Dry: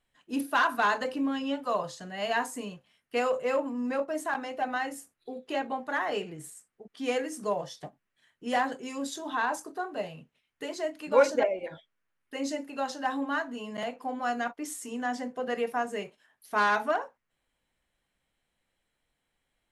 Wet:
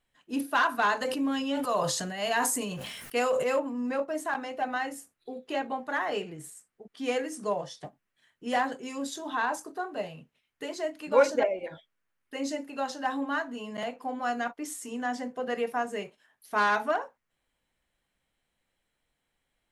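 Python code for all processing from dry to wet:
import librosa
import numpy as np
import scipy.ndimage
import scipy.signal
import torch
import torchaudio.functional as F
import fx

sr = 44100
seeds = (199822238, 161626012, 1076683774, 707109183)

y = fx.chain(x, sr, fx.high_shelf(hz=6300.0, db=10.0),
    fx.sustainer(db_per_s=30.0), at=(0.97, 3.59))
y = fx.chain(y, sr, fx.highpass(hz=52.0, slope=12),
    fx.resample_bad(factor=2, down='none', up='filtered'), at=(7.35, 7.85))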